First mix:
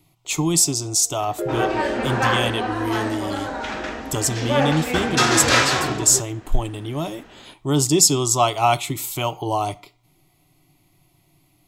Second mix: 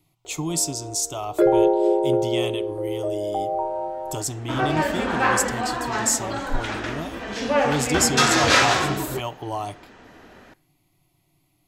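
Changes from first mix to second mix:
speech −6.5 dB
first sound +9.5 dB
second sound: entry +3.00 s

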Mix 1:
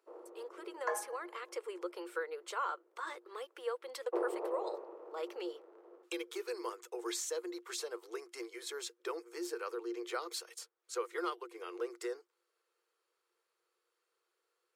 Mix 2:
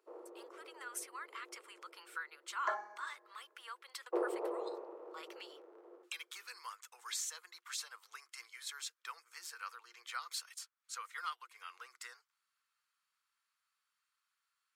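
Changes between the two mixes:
speech: add high-pass filter 1,100 Hz 24 dB per octave
second sound: entry +1.80 s

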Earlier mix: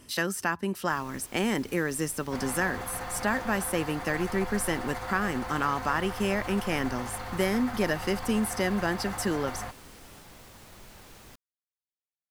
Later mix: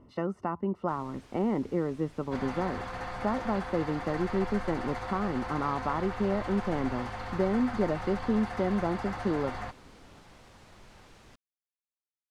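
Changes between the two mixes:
speech: add Savitzky-Golay smoothing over 65 samples
first sound −3.5 dB
master: add high-frequency loss of the air 67 metres

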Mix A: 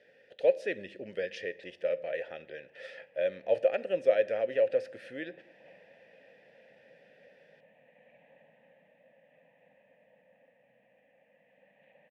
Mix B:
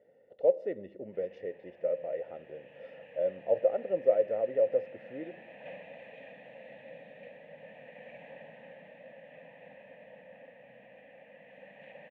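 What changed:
speech: add Savitzky-Golay smoothing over 65 samples
background +12.0 dB

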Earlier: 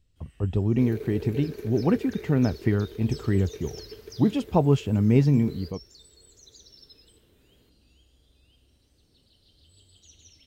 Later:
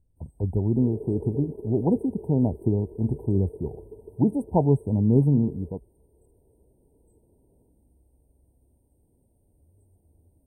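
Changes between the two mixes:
second sound: add high-frequency loss of the air 81 metres
master: add linear-phase brick-wall band-stop 1,000–8,100 Hz

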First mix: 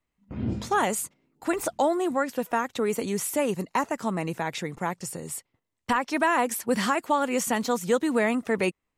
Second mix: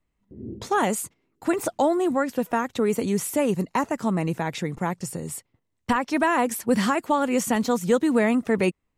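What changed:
speech: add low-shelf EQ 330 Hz +8 dB
background: add transistor ladder low-pass 430 Hz, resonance 65%

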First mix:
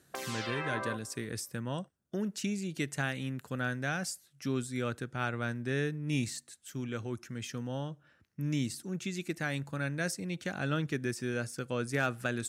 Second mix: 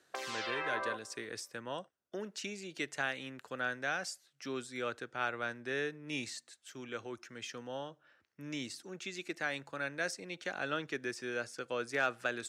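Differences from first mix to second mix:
speech: add parametric band 83 Hz +4.5 dB 1.3 octaves
master: add three-way crossover with the lows and the highs turned down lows −21 dB, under 340 Hz, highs −14 dB, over 6,900 Hz

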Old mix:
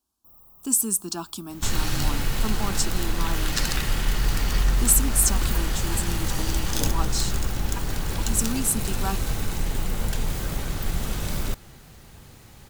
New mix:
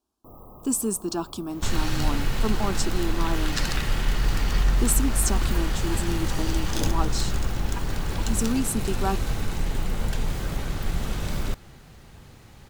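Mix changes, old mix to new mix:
speech: add parametric band 440 Hz +8.5 dB 1.4 octaves
first sound: remove guitar amp tone stack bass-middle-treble 5-5-5
master: add high-shelf EQ 6,900 Hz −9.5 dB

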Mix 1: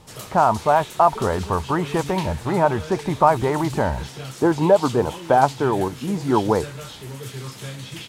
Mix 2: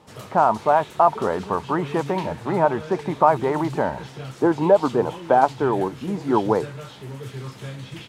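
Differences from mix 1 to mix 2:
speech: add high-pass filter 190 Hz 12 dB per octave
master: add high-shelf EQ 3,800 Hz −12 dB

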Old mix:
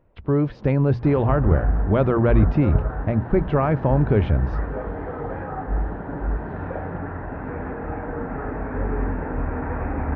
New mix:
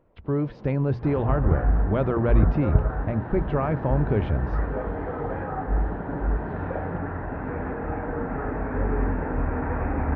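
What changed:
speech −5.0 dB
first sound: send on

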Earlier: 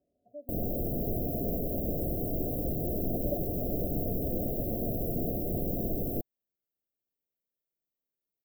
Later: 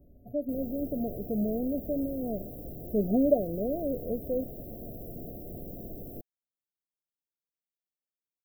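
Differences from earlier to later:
speech: remove resonant band-pass 1,300 Hz, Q 2.2
background −10.0 dB

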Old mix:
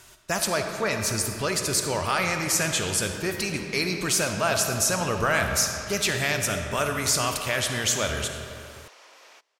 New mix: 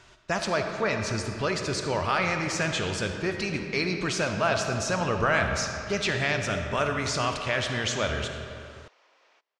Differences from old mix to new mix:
background −10.0 dB
master: add Gaussian smoothing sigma 1.6 samples

